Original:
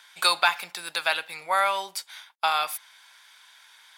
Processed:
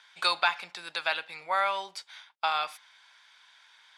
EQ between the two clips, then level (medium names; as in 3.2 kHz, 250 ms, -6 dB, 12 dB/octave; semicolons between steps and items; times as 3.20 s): low-pass 5.5 kHz 12 dB/octave; -4.0 dB